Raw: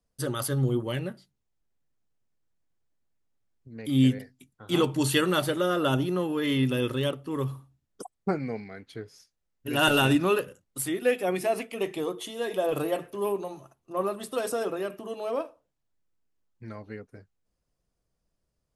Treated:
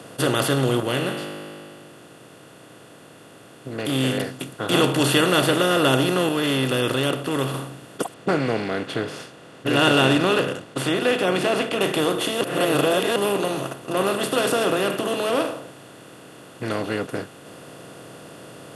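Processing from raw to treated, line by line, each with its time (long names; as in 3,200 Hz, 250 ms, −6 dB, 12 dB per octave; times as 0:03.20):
0:00.80–0:04.18: tuned comb filter 51 Hz, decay 1.1 s
0:06.29–0:07.54: clip gain −6 dB
0:08.14–0:11.81: high-frequency loss of the air 120 metres
0:12.41–0:13.16: reverse
whole clip: compressor on every frequency bin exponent 0.4; high-pass filter 87 Hz; dynamic equaliser 3,700 Hz, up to +3 dB, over −39 dBFS, Q 0.79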